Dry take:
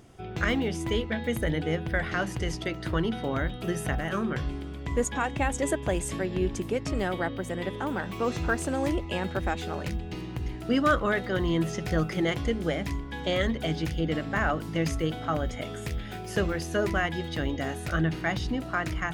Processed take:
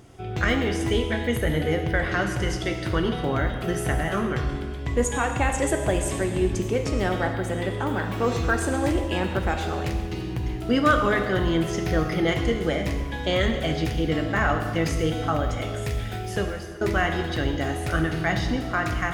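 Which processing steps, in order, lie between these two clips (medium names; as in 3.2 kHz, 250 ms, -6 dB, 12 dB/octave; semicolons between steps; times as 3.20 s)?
11.79–12.28 s: peaking EQ 7.4 kHz -14.5 dB 0.32 oct; 16.17–16.81 s: fade out; gated-style reverb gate 470 ms falling, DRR 4 dB; trim +3 dB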